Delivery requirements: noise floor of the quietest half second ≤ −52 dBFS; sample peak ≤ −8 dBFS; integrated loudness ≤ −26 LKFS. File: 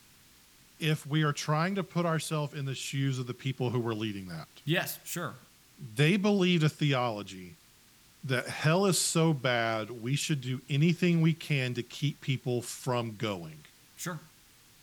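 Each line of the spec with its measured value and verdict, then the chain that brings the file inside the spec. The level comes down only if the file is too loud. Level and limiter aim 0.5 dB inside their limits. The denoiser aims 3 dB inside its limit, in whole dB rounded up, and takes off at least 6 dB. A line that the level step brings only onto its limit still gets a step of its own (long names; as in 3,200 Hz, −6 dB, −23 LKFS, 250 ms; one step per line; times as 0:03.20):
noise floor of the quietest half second −60 dBFS: in spec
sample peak −12.5 dBFS: in spec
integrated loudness −30.5 LKFS: in spec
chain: no processing needed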